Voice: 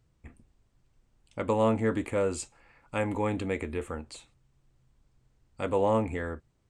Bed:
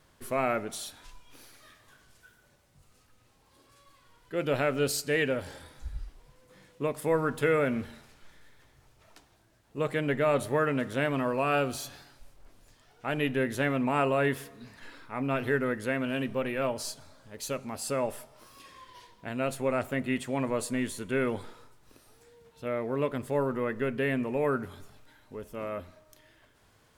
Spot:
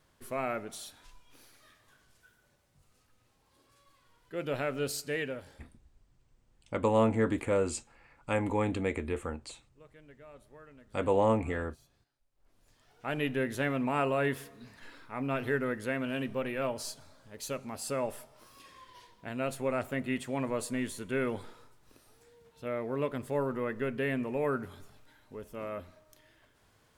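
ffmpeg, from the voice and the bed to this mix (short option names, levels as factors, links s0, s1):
-filter_complex "[0:a]adelay=5350,volume=0.944[s0];[1:a]volume=8.41,afade=t=out:st=5.07:d=0.73:silence=0.0841395,afade=t=in:st=12.31:d=0.65:silence=0.0630957[s1];[s0][s1]amix=inputs=2:normalize=0"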